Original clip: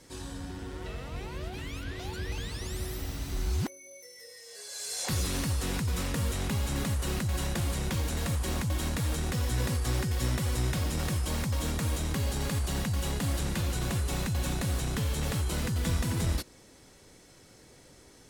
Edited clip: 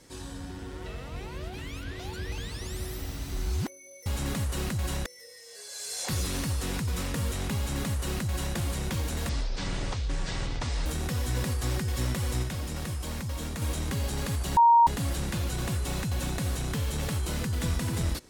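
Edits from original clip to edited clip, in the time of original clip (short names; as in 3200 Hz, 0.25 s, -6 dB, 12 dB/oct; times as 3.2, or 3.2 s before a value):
6.56–7.56 copy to 4.06
8.29–9.09 speed 51%
10.66–11.85 gain -3.5 dB
12.8–13.1 bleep 935 Hz -14.5 dBFS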